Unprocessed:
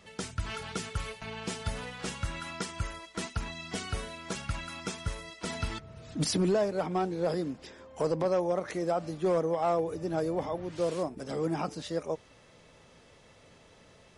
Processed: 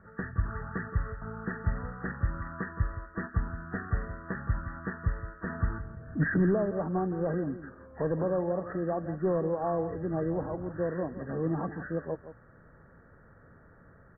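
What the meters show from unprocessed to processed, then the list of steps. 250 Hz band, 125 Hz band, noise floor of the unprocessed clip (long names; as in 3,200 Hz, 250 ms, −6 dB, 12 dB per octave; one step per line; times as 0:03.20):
+2.0 dB, +4.5 dB, −58 dBFS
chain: hearing-aid frequency compression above 1,100 Hz 4 to 1
low-shelf EQ 320 Hz +12 dB
single-tap delay 168 ms −12.5 dB
level −5.5 dB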